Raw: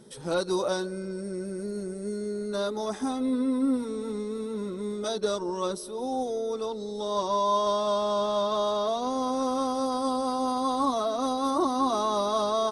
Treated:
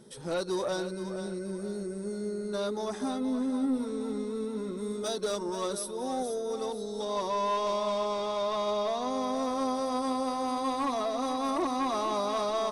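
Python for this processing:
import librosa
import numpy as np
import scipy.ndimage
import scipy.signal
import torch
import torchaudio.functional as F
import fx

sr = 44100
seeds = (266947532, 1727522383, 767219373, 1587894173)

y = 10.0 ** (-21.5 / 20.0) * np.tanh(x / 10.0 ** (-21.5 / 20.0))
y = fx.high_shelf(y, sr, hz=8800.0, db=12.0, at=(4.77, 7.05))
y = fx.echo_feedback(y, sr, ms=477, feedback_pct=38, wet_db=-10)
y = y * librosa.db_to_amplitude(-2.0)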